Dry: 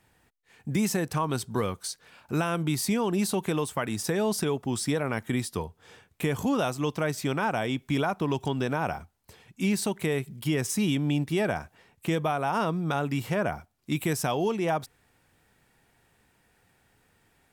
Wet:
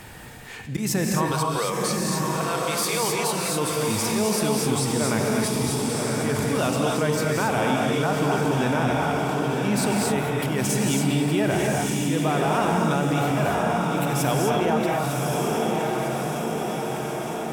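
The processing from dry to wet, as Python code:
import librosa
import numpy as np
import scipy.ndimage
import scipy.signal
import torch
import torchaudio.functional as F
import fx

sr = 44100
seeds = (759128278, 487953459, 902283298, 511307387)

y = fx.highpass(x, sr, hz=460.0, slope=24, at=(1.31, 3.32))
y = fx.auto_swell(y, sr, attack_ms=147.0)
y = fx.echo_diffused(y, sr, ms=1068, feedback_pct=50, wet_db=-4.0)
y = fx.rev_gated(y, sr, seeds[0], gate_ms=290, shape='rising', drr_db=0.0)
y = fx.env_flatten(y, sr, amount_pct=50)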